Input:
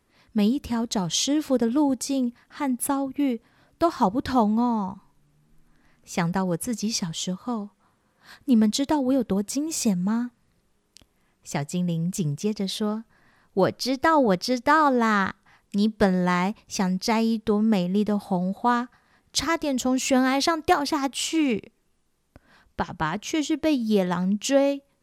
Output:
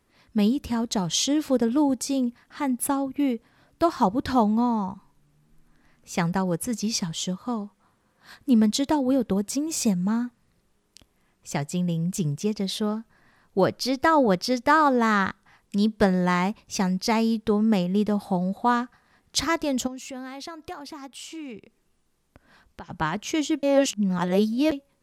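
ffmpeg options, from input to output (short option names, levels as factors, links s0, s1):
-filter_complex "[0:a]asplit=3[s0][s1][s2];[s0]afade=t=out:st=19.86:d=0.02[s3];[s1]acompressor=threshold=0.00447:ratio=2:attack=3.2:release=140:knee=1:detection=peak,afade=t=in:st=19.86:d=0.02,afade=t=out:st=22.89:d=0.02[s4];[s2]afade=t=in:st=22.89:d=0.02[s5];[s3][s4][s5]amix=inputs=3:normalize=0,asplit=3[s6][s7][s8];[s6]atrim=end=23.632[s9];[s7]atrim=start=23.628:end=24.722,asetpts=PTS-STARTPTS,areverse[s10];[s8]atrim=start=24.718[s11];[s9][s10]acrossfade=d=0.004:c1=hsin:c2=hsin[s12];[s12][s11]acrossfade=d=0.004:c1=hsin:c2=hsin"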